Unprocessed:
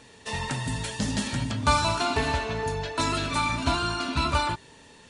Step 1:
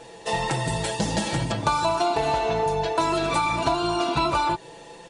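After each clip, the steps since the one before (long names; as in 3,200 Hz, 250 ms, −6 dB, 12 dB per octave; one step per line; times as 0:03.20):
flat-topped bell 570 Hz +9 dB
comb filter 6 ms, depth 81%
downward compressor 6 to 1, threshold −21 dBFS, peak gain reduction 10 dB
level +1.5 dB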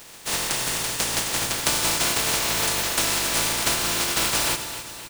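compressing power law on the bin magnitudes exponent 0.14
repeating echo 261 ms, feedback 52%, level −12 dB
convolution reverb RT60 1.2 s, pre-delay 49 ms, DRR 11 dB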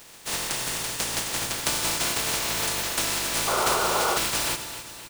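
sound drawn into the spectrogram noise, 0:03.47–0:04.18, 350–1,500 Hz −22 dBFS
level −3.5 dB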